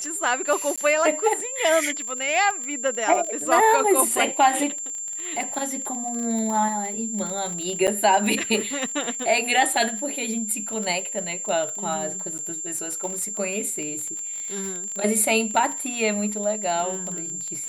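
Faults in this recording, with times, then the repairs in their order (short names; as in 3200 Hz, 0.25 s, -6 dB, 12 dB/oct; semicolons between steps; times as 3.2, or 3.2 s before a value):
crackle 27/s -27 dBFS
tone 7300 Hz -29 dBFS
0.76–0.78 gap 16 ms
7.87–7.88 gap 7.9 ms
12.38–12.39 gap 8.5 ms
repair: de-click; notch 7300 Hz, Q 30; interpolate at 0.76, 16 ms; interpolate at 7.87, 7.9 ms; interpolate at 12.38, 8.5 ms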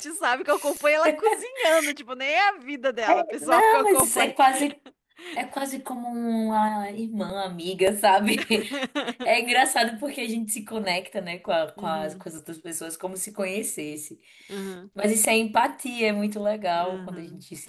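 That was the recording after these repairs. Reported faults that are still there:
none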